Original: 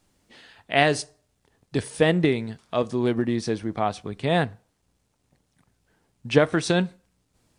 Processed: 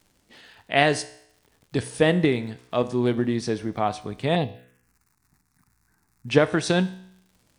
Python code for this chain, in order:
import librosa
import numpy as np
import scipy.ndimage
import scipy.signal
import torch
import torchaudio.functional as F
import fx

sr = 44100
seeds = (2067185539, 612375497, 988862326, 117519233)

y = fx.comb_fb(x, sr, f0_hz=62.0, decay_s=0.73, harmonics='all', damping=0.0, mix_pct=50)
y = fx.dmg_crackle(y, sr, seeds[0], per_s=130.0, level_db=-52.0)
y = fx.env_phaser(y, sr, low_hz=540.0, high_hz=1500.0, full_db=-27.5, at=(4.35, 6.28))
y = y * 10.0 ** (5.0 / 20.0)